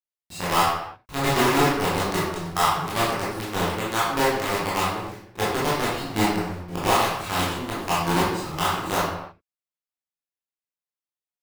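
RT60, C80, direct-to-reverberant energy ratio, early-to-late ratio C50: no single decay rate, 3.5 dB, -9.0 dB, -0.5 dB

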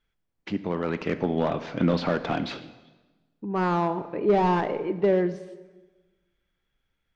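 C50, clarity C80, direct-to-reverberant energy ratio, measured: 14.0 dB, 15.5 dB, 11.5 dB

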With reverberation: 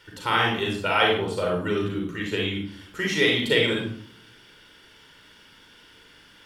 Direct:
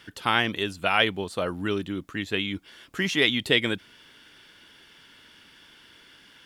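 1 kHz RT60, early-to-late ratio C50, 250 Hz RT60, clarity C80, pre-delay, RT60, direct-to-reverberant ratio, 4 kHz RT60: 0.65 s, 2.0 dB, 0.85 s, 6.5 dB, 35 ms, 0.65 s, -1.5 dB, 0.40 s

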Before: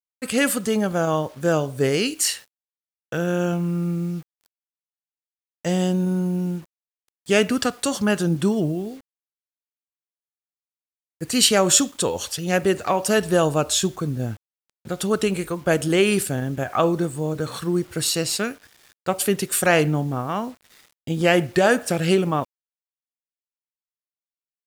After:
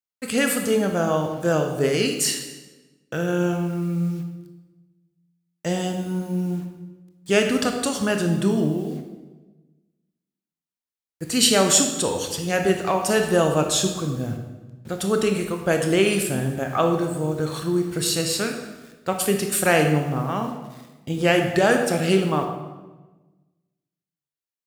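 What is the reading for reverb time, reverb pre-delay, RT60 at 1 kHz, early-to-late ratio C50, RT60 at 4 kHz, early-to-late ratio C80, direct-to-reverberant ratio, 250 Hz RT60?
1.2 s, 19 ms, 1.1 s, 6.0 dB, 0.95 s, 8.0 dB, 4.0 dB, 1.4 s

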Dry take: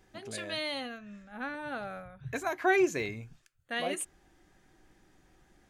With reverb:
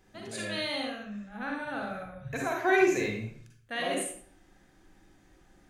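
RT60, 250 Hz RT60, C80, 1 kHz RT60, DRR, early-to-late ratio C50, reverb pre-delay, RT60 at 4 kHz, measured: 0.55 s, 0.65 s, 7.0 dB, 0.50 s, -0.5 dB, 2.0 dB, 39 ms, 0.40 s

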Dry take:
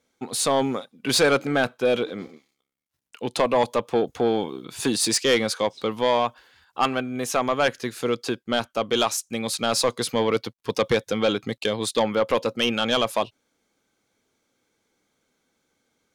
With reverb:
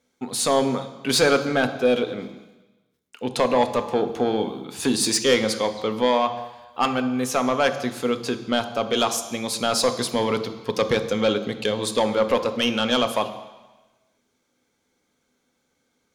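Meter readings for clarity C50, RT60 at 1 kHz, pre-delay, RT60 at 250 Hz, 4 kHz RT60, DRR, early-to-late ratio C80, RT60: 11.0 dB, 1.2 s, 3 ms, 1.1 s, 1.2 s, 8.0 dB, 13.0 dB, 1.1 s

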